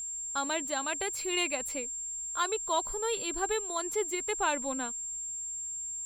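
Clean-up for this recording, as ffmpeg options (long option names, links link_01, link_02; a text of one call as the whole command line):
ffmpeg -i in.wav -af "bandreject=frequency=7400:width=30,agate=range=-21dB:threshold=-30dB" out.wav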